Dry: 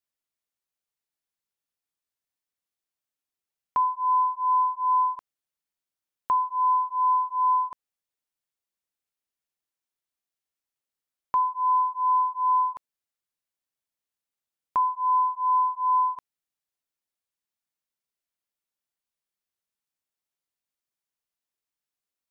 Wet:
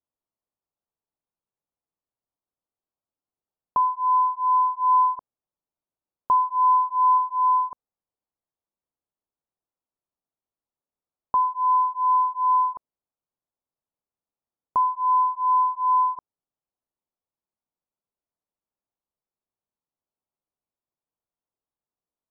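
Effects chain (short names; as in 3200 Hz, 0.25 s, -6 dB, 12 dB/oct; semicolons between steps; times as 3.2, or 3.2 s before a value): LPF 1100 Hz 24 dB/oct; 4.73–7.18 dynamic EQ 600 Hz, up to +4 dB, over -36 dBFS, Q 1.1; gain +4 dB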